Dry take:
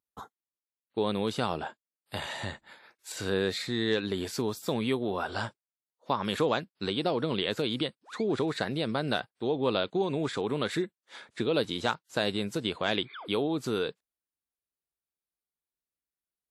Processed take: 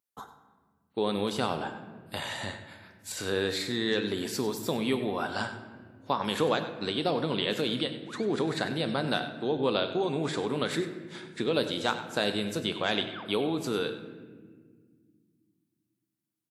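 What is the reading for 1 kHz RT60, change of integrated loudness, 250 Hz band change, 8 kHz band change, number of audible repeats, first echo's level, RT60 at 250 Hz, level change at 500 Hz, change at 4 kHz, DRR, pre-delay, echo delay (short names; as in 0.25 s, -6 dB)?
1.3 s, +0.5 dB, +0.5 dB, +3.0 dB, 1, -13.5 dB, 3.0 s, 0.0 dB, +1.5 dB, 7.0 dB, 3 ms, 97 ms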